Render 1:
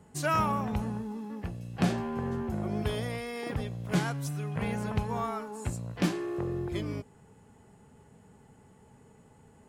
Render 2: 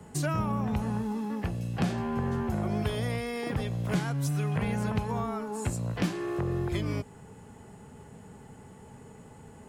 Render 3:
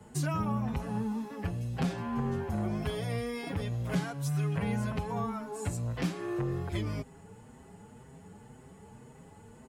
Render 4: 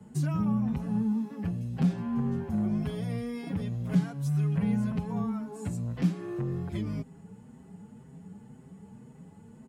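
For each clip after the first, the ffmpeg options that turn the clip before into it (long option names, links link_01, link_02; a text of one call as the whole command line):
ffmpeg -i in.wav -filter_complex "[0:a]acrossover=split=200|570[link_01][link_02][link_03];[link_01]acompressor=threshold=-37dB:ratio=4[link_04];[link_02]acompressor=threshold=-45dB:ratio=4[link_05];[link_03]acompressor=threshold=-45dB:ratio=4[link_06];[link_04][link_05][link_06]amix=inputs=3:normalize=0,volume=8dB" out.wav
ffmpeg -i in.wav -filter_complex "[0:a]asplit=2[link_01][link_02];[link_02]adelay=6.4,afreqshift=1.9[link_03];[link_01][link_03]amix=inputs=2:normalize=1" out.wav
ffmpeg -i in.wav -af "equalizer=frequency=190:width_type=o:width=1.2:gain=13.5,volume=-6dB" out.wav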